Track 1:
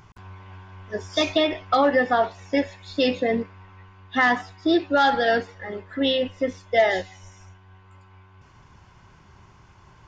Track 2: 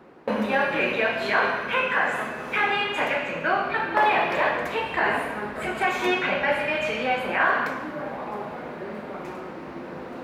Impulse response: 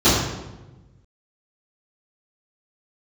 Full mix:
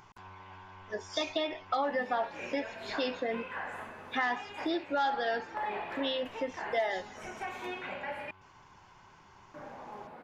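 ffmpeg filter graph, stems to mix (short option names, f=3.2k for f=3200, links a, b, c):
-filter_complex "[0:a]equalizer=f=64:t=o:w=3:g=-12.5,volume=-3dB[a];[1:a]adelay=1600,volume=-15.5dB,asplit=3[b][c][d];[b]atrim=end=8.31,asetpts=PTS-STARTPTS,afade=t=out:st=8.306:d=0.004:c=hsin[e];[c]atrim=start=8.31:end=9.54,asetpts=PTS-STARTPTS,volume=0[f];[d]atrim=start=9.54,asetpts=PTS-STARTPTS,afade=t=in:d=0.004:c=hsin[g];[e][f][g]concat=n=3:v=0:a=1[h];[a][h]amix=inputs=2:normalize=0,equalizer=f=870:t=o:w=0.39:g=5,acompressor=threshold=-35dB:ratio=2"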